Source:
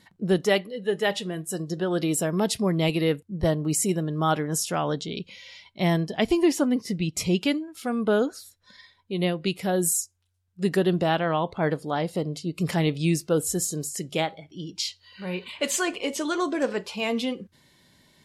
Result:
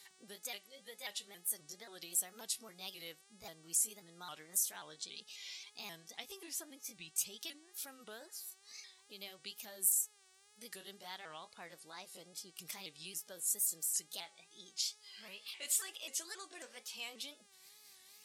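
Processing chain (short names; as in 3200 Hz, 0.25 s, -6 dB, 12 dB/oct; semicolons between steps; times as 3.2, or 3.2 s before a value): repeated pitch sweeps +3 st, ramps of 0.268 s; compressor 2:1, threshold -45 dBFS, peak gain reduction 15 dB; pre-emphasis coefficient 0.97; buzz 400 Hz, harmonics 25, -73 dBFS 0 dB/oct; wow and flutter 110 cents; gain +5.5 dB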